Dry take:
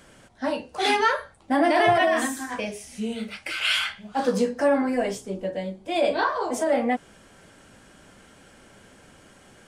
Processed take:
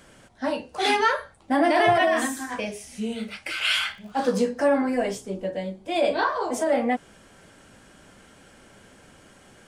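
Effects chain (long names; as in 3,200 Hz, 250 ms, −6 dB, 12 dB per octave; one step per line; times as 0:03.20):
0:03.80–0:04.25: surface crackle 98 per second −44 dBFS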